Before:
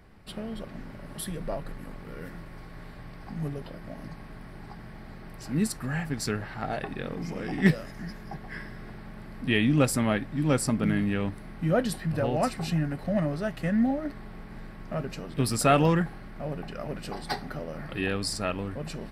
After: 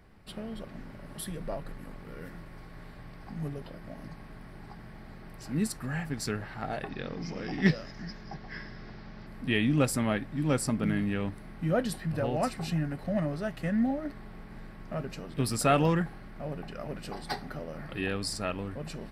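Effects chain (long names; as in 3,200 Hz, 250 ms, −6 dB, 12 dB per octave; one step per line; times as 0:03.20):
0:06.89–0:09.27: high shelf with overshoot 7,100 Hz −11 dB, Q 3
level −3 dB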